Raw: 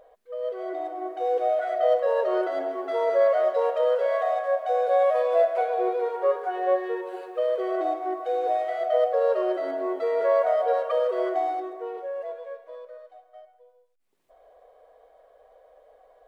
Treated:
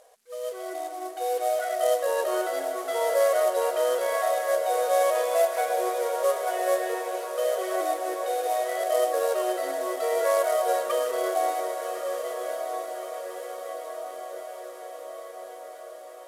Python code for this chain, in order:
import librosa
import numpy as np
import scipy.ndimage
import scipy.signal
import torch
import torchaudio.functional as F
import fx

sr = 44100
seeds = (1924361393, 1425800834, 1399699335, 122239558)

p1 = fx.cvsd(x, sr, bps=64000)
p2 = fx.tilt_eq(p1, sr, slope=3.0)
y = p2 + fx.echo_diffused(p2, sr, ms=1227, feedback_pct=65, wet_db=-8, dry=0)